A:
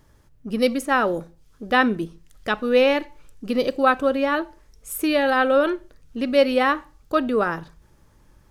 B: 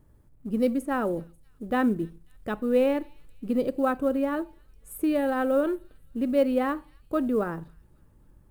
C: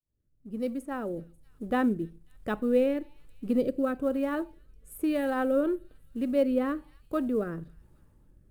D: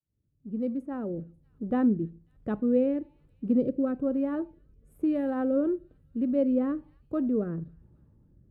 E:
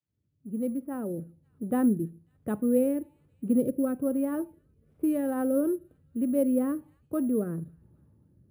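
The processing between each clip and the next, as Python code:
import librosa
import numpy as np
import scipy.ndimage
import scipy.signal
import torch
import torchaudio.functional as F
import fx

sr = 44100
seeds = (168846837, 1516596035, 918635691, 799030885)

y1 = fx.echo_wet_highpass(x, sr, ms=270, feedback_pct=49, hz=4200.0, wet_db=-16)
y1 = fx.quant_companded(y1, sr, bits=6)
y1 = fx.curve_eq(y1, sr, hz=(270.0, 5900.0, 8700.0), db=(0, -19, -9))
y1 = y1 * librosa.db_to_amplitude(-1.5)
y2 = fx.fade_in_head(y1, sr, length_s=1.47)
y2 = fx.rotary(y2, sr, hz=1.1)
y3 = scipy.signal.sosfilt(scipy.signal.butter(2, 120.0, 'highpass', fs=sr, output='sos'), y2)
y3 = fx.tilt_eq(y3, sr, slope=-4.5)
y3 = y3 * librosa.db_to_amplitude(-6.0)
y4 = scipy.signal.sosfilt(scipy.signal.butter(4, 68.0, 'highpass', fs=sr, output='sos'), y3)
y4 = np.repeat(scipy.signal.resample_poly(y4, 1, 4), 4)[:len(y4)]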